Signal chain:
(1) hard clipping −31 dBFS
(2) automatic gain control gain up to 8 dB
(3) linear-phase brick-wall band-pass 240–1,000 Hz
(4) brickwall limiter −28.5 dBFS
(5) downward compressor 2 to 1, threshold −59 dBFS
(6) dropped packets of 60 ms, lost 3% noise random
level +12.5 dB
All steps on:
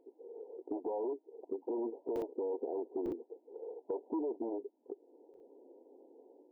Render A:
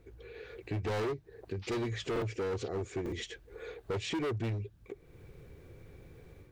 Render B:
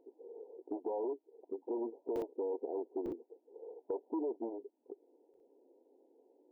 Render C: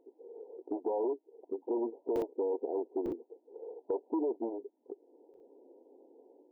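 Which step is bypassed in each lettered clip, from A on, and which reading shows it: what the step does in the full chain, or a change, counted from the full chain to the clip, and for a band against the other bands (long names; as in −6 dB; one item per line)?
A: 3, change in momentary loudness spread −2 LU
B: 2, change in momentary loudness spread −6 LU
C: 4, average gain reduction 3.5 dB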